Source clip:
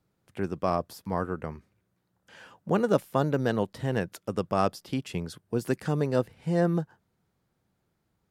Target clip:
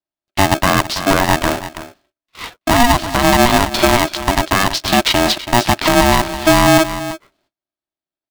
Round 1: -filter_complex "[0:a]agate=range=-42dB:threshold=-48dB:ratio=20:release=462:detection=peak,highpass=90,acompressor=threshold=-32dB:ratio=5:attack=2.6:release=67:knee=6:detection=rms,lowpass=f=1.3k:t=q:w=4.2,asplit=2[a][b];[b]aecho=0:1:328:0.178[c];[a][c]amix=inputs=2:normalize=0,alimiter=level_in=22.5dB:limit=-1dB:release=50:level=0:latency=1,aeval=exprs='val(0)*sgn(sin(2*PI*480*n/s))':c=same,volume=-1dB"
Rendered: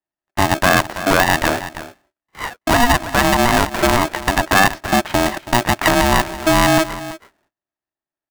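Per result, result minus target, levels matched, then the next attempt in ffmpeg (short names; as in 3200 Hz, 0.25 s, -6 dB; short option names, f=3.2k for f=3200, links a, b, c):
compressor: peak gain reduction +6.5 dB; 4000 Hz band -2.5 dB
-filter_complex "[0:a]agate=range=-42dB:threshold=-48dB:ratio=20:release=462:detection=peak,highpass=90,acompressor=threshold=-24dB:ratio=5:attack=2.6:release=67:knee=6:detection=rms,lowpass=f=1.3k:t=q:w=4.2,asplit=2[a][b];[b]aecho=0:1:328:0.178[c];[a][c]amix=inputs=2:normalize=0,alimiter=level_in=22.5dB:limit=-1dB:release=50:level=0:latency=1,aeval=exprs='val(0)*sgn(sin(2*PI*480*n/s))':c=same,volume=-1dB"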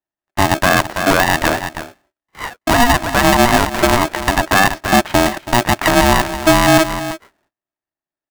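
4000 Hz band -2.5 dB
-filter_complex "[0:a]agate=range=-42dB:threshold=-48dB:ratio=20:release=462:detection=peak,highpass=90,acompressor=threshold=-24dB:ratio=5:attack=2.6:release=67:knee=6:detection=rms,lowpass=f=3.9k:t=q:w=4.2,asplit=2[a][b];[b]aecho=0:1:328:0.178[c];[a][c]amix=inputs=2:normalize=0,alimiter=level_in=22.5dB:limit=-1dB:release=50:level=0:latency=1,aeval=exprs='val(0)*sgn(sin(2*PI*480*n/s))':c=same,volume=-1dB"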